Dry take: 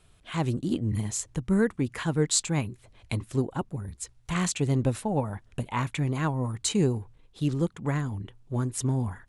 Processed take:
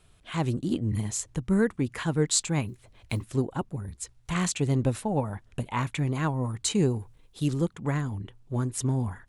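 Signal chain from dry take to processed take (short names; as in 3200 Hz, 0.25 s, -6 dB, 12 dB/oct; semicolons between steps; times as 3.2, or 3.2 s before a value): 2.68–3.28 block floating point 7-bit; 6.99–7.61 high shelf 6700 Hz +10.5 dB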